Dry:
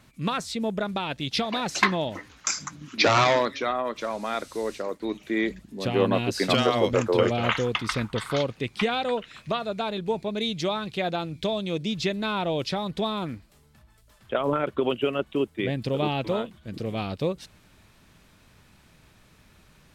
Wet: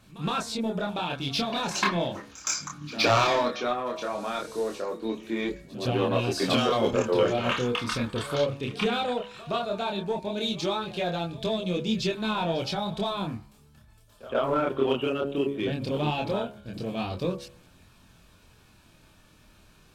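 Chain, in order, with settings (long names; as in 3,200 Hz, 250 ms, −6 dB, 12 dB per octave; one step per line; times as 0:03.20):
notch filter 2,000 Hz, Q 6.6
hum removal 70 Hz, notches 34
in parallel at −7.5 dB: hard clipping −25.5 dBFS, distortion −7 dB
on the sum: multi-voice chorus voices 2, 0.17 Hz, delay 26 ms, depth 3.7 ms
backwards echo 117 ms −18.5 dB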